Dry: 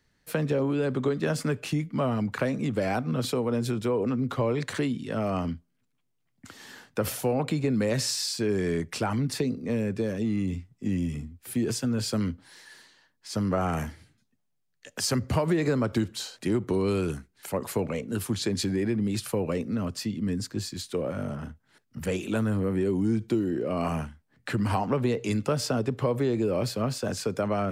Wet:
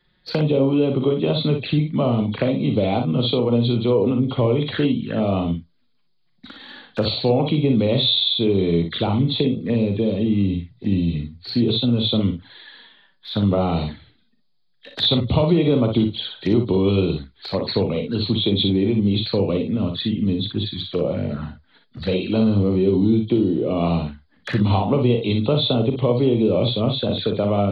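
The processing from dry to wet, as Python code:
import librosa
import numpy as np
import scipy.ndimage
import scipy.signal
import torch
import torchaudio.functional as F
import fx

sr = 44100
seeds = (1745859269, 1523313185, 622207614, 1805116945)

y = fx.freq_compress(x, sr, knee_hz=3100.0, ratio=4.0)
y = fx.env_flanger(y, sr, rest_ms=5.7, full_db=-26.5)
y = fx.room_early_taps(y, sr, ms=(41, 59), db=(-10.0, -7.0))
y = F.gain(torch.from_numpy(y), 7.5).numpy()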